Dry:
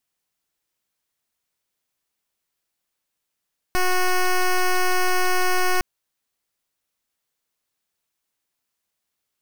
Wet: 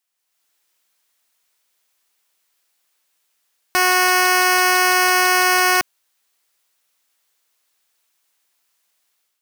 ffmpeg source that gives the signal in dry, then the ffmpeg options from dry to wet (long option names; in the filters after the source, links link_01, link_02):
-f lavfi -i "aevalsrc='0.119*(2*lt(mod(366*t,1),0.1)-1)':duration=2.06:sample_rate=44100"
-filter_complex "[0:a]highpass=frequency=780:poles=1,dynaudnorm=framelen=130:gausssize=5:maxgain=9.5dB,asplit=2[link_01][link_02];[link_02]asoftclip=type=tanh:threshold=-18.5dB,volume=-11.5dB[link_03];[link_01][link_03]amix=inputs=2:normalize=0"